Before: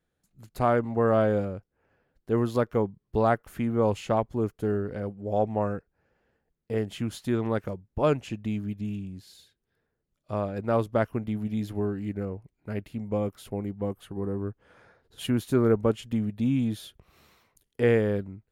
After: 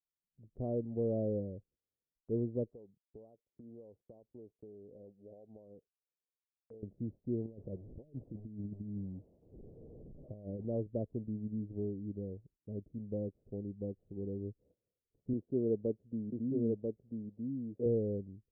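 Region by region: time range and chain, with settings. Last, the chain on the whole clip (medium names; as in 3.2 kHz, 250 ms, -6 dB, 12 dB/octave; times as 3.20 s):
2.70–6.83 s: tilt EQ +4 dB/octave + compression 16:1, threshold -35 dBFS + rippled Chebyshev low-pass 3.7 kHz, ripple 3 dB
7.46–10.68 s: one-bit delta coder 32 kbps, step -39.5 dBFS + compressor with a negative ratio -33 dBFS, ratio -0.5
15.33–17.86 s: frequency weighting D + delay 991 ms -3 dB
whole clip: steep low-pass 550 Hz 36 dB/octave; gate -57 dBFS, range -21 dB; trim -9 dB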